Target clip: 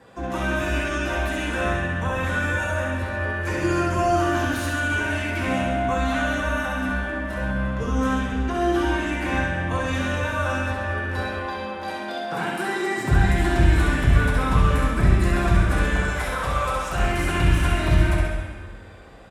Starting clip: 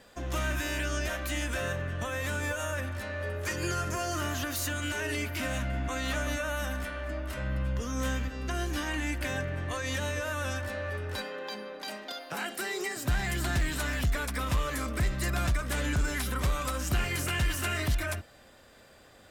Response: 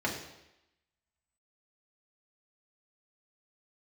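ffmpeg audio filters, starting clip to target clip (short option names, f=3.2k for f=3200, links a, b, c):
-filter_complex "[0:a]asettb=1/sr,asplit=3[a][b][c];[a]atrim=end=15.834[d];[b]atrim=start=15.83:end=16.98,asetpts=PTS-STARTPTS,afade=t=in:d=0.004:c=qsin,afade=t=out:st=1.146:d=0.004:c=qsin,lowshelf=f=400:t=q:w=1.5:g=-10.5[e];[c]atrim=start=16.976[f];[d][e]acrossfade=d=0.004:c1=hsin:c2=qsin[g];[g][f]acrossfade=d=0.004:c1=qsin:c2=hsin,aecho=1:1:66|132|198|264|330|396|462:0.531|0.297|0.166|0.0932|0.0522|0.0292|0.0164[h];[1:a]atrim=start_sample=2205,asetrate=22932,aresample=44100[i];[h][i]afir=irnorm=-1:irlink=0,volume=-4.5dB"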